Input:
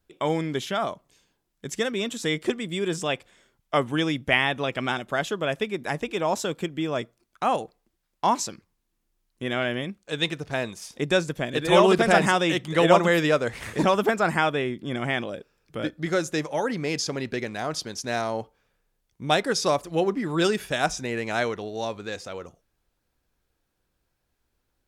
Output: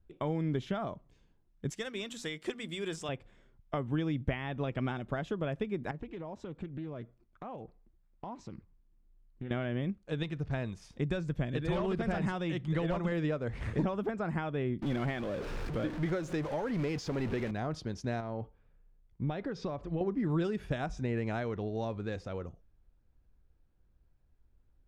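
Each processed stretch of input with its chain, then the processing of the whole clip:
1.7–3.09 tilt +4 dB/oct + notches 60/120/180/240 Hz + companded quantiser 6-bit
5.91–9.51 LPF 3400 Hz 6 dB/oct + compressor 3:1, threshold -40 dBFS + Doppler distortion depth 0.22 ms
10.23–13.12 bell 430 Hz -4 dB 2.5 oct + overloaded stage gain 15.5 dB
14.82–17.51 zero-crossing step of -28 dBFS + low shelf 250 Hz -8.5 dB
18.2–20.01 LPF 4100 Hz + compressor 4:1, threshold -30 dBFS
whole clip: high shelf 10000 Hz -5 dB; compressor, threshold -27 dBFS; RIAA curve playback; gain -6.5 dB

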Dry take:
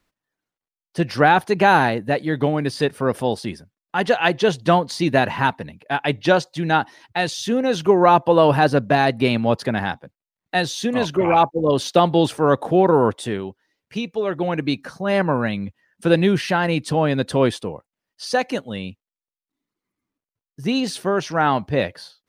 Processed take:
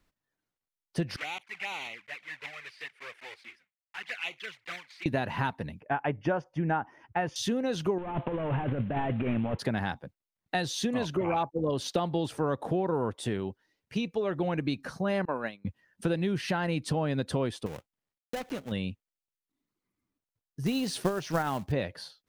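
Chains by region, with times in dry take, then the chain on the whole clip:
1.16–5.06 block floating point 3-bit + band-pass 2200 Hz, Q 4 + envelope flanger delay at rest 6.7 ms, full sweep at -25.5 dBFS
5.8–7.36 running mean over 11 samples + dynamic EQ 1000 Hz, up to +5 dB, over -29 dBFS, Q 0.78
7.98–9.59 CVSD 16 kbps + negative-ratio compressor -25 dBFS
15.25–15.65 HPF 350 Hz + expander -21 dBFS
17.66–18.72 switching dead time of 0.28 ms + compressor 3:1, threshold -30 dBFS
20.66–21.72 transient shaper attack +11 dB, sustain +1 dB + short-mantissa float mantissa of 2-bit
whole clip: low shelf 160 Hz +6.5 dB; compressor, threshold -22 dBFS; gain -4 dB

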